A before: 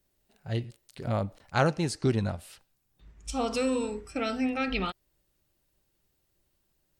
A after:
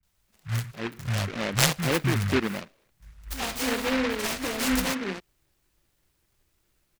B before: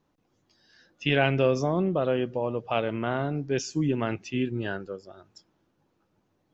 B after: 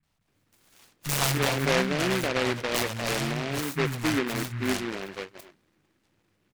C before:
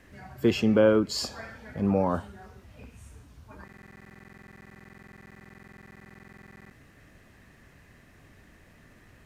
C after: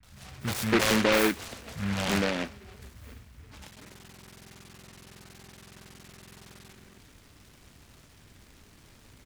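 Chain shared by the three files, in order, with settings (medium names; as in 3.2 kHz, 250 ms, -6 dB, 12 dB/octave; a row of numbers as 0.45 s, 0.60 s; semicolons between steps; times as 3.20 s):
self-modulated delay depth 0.43 ms; three bands offset in time lows, highs, mids 30/280 ms, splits 190/690 Hz; delay time shaken by noise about 1.6 kHz, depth 0.24 ms; normalise loudness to -27 LUFS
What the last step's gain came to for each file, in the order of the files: +5.0 dB, +2.0 dB, +1.0 dB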